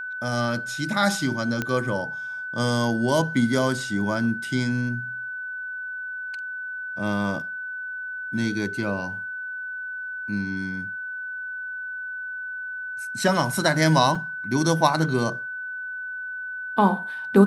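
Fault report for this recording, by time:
tone 1500 Hz -30 dBFS
1.62 pop -12 dBFS
14.15 gap 2.7 ms

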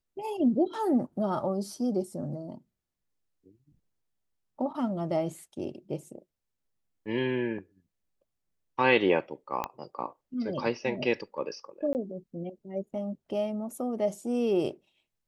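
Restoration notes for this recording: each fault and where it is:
9.64 pop -17 dBFS
11.93–11.95 gap 19 ms

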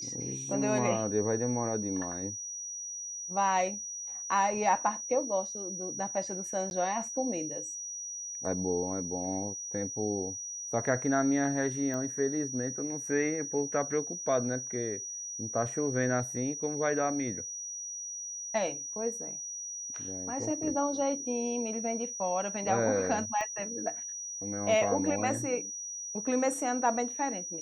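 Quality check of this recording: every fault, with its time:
tone 5800 Hz -37 dBFS
6.7–6.71 gap 11 ms
11.94 pop -24 dBFS
23.41 pop -22 dBFS

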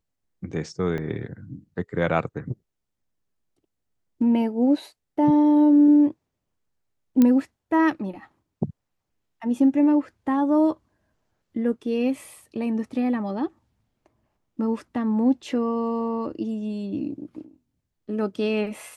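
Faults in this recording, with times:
0.98 gap 2.8 ms
7.22 pop -8 dBFS

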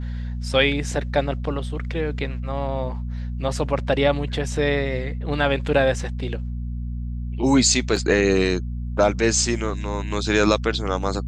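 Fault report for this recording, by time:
hum 60 Hz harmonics 4 -28 dBFS
7.96 gap 4 ms

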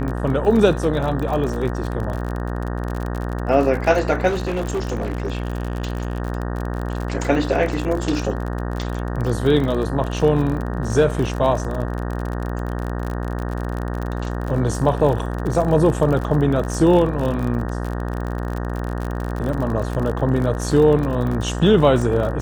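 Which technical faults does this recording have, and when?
buzz 60 Hz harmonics 31 -25 dBFS
crackle 43/s -25 dBFS
4.28–6.2 clipped -19 dBFS
20.19 gap 3.3 ms

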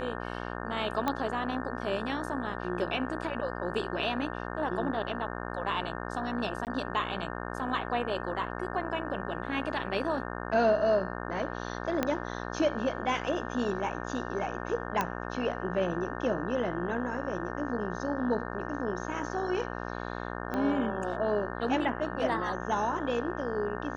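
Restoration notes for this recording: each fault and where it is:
buzz 60 Hz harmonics 30 -37 dBFS
1.08 pop -15 dBFS
6.65–6.67 gap 18 ms
12.03 pop -13 dBFS
15.01 pop -14 dBFS
20.54 pop -20 dBFS

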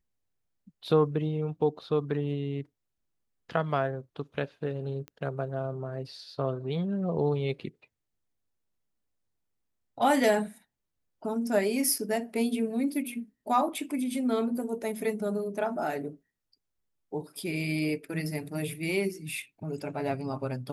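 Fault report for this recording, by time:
5.08 pop -27 dBFS

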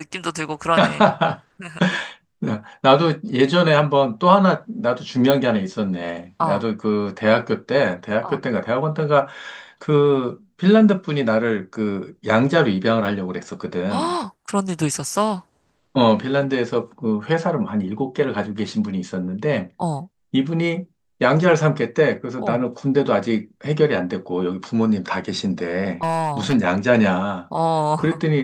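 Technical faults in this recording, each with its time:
5.3 pop -4 dBFS
13.05 gap 2.5 ms
26.03–26.55 clipped -16 dBFS

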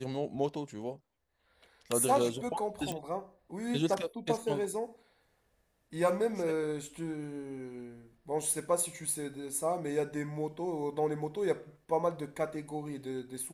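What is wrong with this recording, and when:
2.92 pop

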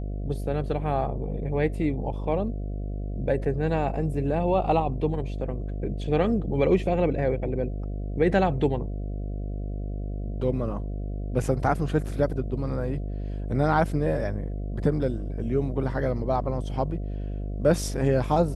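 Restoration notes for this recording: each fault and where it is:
buzz 50 Hz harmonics 14 -31 dBFS

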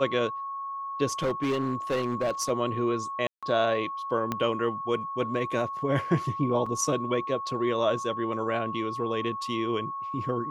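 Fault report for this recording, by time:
tone 1100 Hz -32 dBFS
1.11–2.51 clipped -22.5 dBFS
3.27–3.43 gap 0.156 s
4.32 pop -14 dBFS
6.66 gap 4.4 ms

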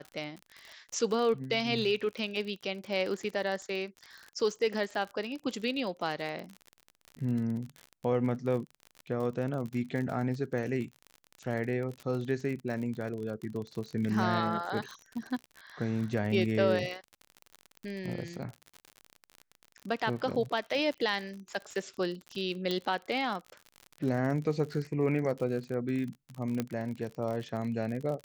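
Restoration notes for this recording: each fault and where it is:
crackle 48/s -36 dBFS
22.71 pop -18 dBFS
26.6 pop -17 dBFS

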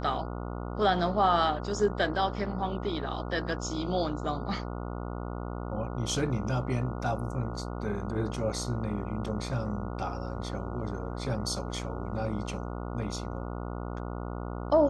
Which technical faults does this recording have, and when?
buzz 60 Hz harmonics 24 -36 dBFS

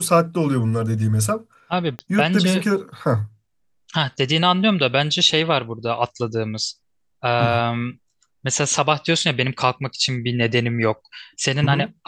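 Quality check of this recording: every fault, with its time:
1.99 pop -16 dBFS

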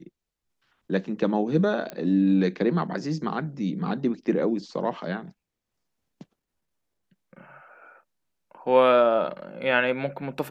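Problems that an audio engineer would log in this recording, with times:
1.9 pop -18 dBFS

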